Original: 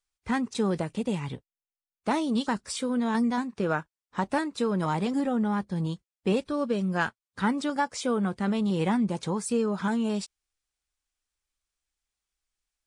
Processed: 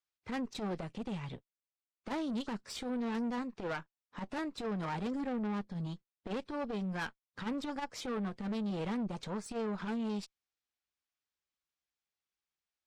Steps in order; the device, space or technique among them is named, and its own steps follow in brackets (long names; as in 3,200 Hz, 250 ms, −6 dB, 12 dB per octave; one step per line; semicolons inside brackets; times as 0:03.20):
valve radio (band-pass filter 100–5,300 Hz; tube saturation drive 29 dB, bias 0.6; saturating transformer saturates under 120 Hz)
level −2.5 dB